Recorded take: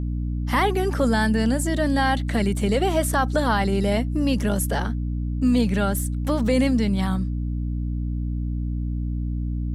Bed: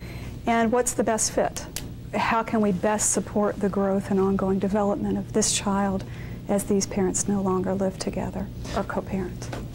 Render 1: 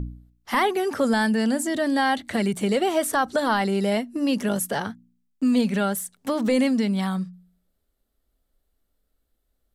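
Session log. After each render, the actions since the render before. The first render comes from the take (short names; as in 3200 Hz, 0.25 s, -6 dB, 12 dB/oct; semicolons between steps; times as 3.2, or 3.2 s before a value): de-hum 60 Hz, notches 5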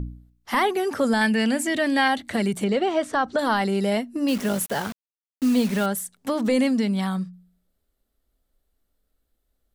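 1.21–2.08 bell 2400 Hz +11.5 dB 0.72 oct; 2.64–3.39 air absorption 110 m; 4.28–5.86 requantised 6-bit, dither none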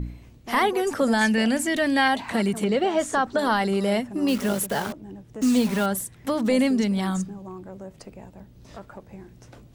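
add bed -14.5 dB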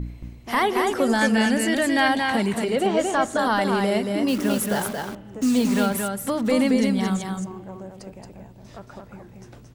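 on a send: echo 0.225 s -4 dB; on the sum: spring tank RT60 2.9 s, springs 34 ms, chirp 55 ms, DRR 20 dB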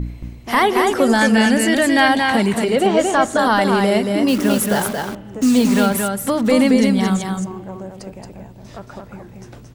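gain +6 dB; limiter -2 dBFS, peak gain reduction 2 dB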